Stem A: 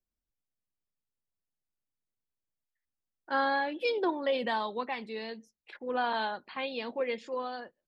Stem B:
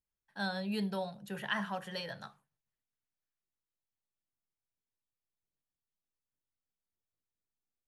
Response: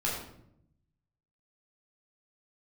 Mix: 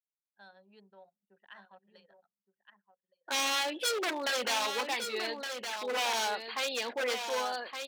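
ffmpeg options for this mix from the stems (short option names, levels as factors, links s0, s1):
-filter_complex "[0:a]aeval=exprs='0.0316*(abs(mod(val(0)/0.0316+3,4)-2)-1)':c=same,highshelf=f=2900:g=8,volume=1.33,asplit=2[s0][s1];[s1]volume=0.447[s2];[1:a]equalizer=f=5900:t=o:w=0.39:g=-7.5,volume=0.141,asplit=2[s3][s4];[s4]volume=0.501[s5];[s2][s5]amix=inputs=2:normalize=0,aecho=0:1:1166:1[s6];[s0][s3][s6]amix=inputs=3:normalize=0,anlmdn=0.001,highpass=380"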